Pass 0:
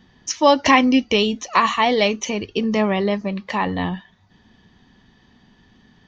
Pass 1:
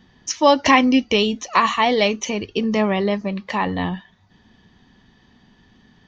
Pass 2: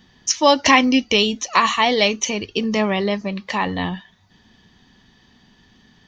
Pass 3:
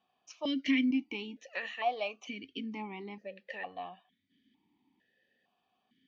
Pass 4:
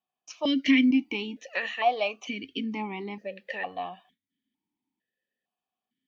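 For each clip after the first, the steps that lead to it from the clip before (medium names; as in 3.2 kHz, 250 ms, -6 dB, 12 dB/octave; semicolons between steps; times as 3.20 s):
no audible change
treble shelf 2.8 kHz +8.5 dB; trim -1 dB
stepped vowel filter 2.2 Hz; trim -7 dB
gate with hold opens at -59 dBFS; trim +7.5 dB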